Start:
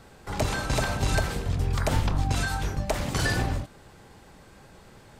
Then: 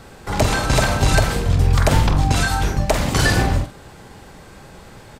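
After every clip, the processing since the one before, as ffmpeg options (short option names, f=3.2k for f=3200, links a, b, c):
-filter_complex "[0:a]asplit=2[a][b];[b]adelay=47,volume=-9dB[c];[a][c]amix=inputs=2:normalize=0,volume=9dB"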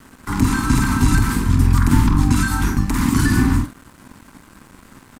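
-filter_complex "[0:a]firequalizer=gain_entry='entry(160,0);entry(260,12);entry(570,-28);entry(960,5);entry(3100,-5);entry(10000,6)':delay=0.05:min_phase=1,acrossover=split=350[a][b];[b]alimiter=limit=-15.5dB:level=0:latency=1:release=135[c];[a][c]amix=inputs=2:normalize=0,aeval=exprs='sgn(val(0))*max(abs(val(0))-0.00841,0)':c=same,volume=1dB"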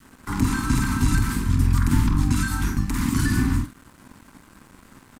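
-af "adynamicequalizer=threshold=0.0141:dfrequency=620:dqfactor=0.96:tfrequency=620:tqfactor=0.96:attack=5:release=100:ratio=0.375:range=3.5:mode=cutabove:tftype=bell,volume=-4.5dB"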